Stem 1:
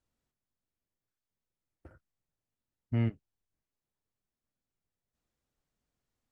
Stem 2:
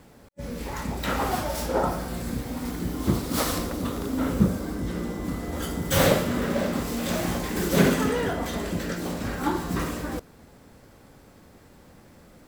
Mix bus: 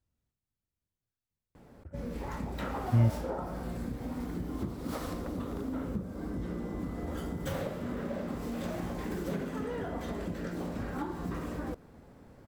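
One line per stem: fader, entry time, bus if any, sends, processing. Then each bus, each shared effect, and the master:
-5.0 dB, 0.00 s, no send, bell 78 Hz +12.5 dB 2.8 oct
-2.5 dB, 1.55 s, no send, high shelf 2200 Hz -11.5 dB; compressor 6:1, threshold -30 dBFS, peak gain reduction 15 dB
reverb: off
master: dry

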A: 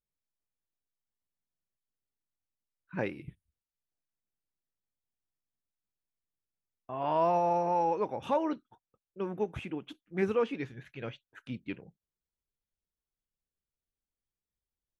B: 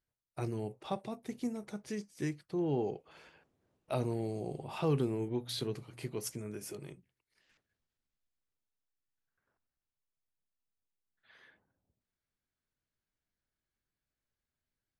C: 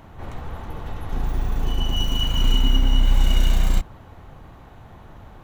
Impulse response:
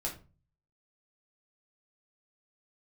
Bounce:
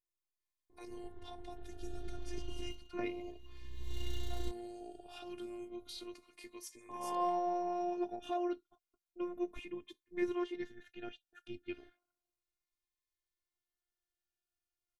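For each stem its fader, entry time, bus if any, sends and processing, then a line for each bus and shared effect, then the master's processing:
-2.0 dB, 0.00 s, no send, dry
-2.0 dB, 0.40 s, no send, weighting filter A; limiter -32.5 dBFS, peak gain reduction 10.5 dB
-17.0 dB, 0.70 s, no send, low-pass opened by the level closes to 780 Hz, open at -14.5 dBFS; fifteen-band EQ 400 Hz +11 dB, 1000 Hz -4 dB, 4000 Hz +8 dB; auto duck -21 dB, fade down 0.25 s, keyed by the first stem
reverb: off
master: robotiser 354 Hz; cascading phaser falling 0.32 Hz

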